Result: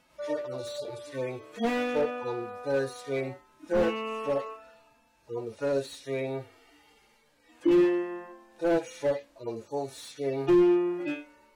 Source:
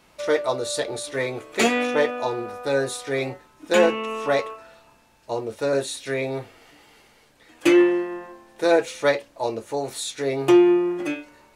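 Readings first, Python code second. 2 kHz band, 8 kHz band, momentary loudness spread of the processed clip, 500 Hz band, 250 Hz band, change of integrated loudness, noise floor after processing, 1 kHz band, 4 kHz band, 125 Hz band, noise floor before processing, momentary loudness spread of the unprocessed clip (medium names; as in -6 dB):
-11.5 dB, -15.5 dB, 16 LU, -6.5 dB, -5.5 dB, -7.0 dB, -65 dBFS, -8.5 dB, -12.5 dB, -4.5 dB, -57 dBFS, 13 LU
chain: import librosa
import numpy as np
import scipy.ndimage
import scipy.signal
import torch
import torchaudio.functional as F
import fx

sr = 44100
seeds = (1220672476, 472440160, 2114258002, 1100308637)

y = fx.hpss_only(x, sr, part='harmonic')
y = fx.slew_limit(y, sr, full_power_hz=84.0)
y = y * librosa.db_to_amplitude(-5.0)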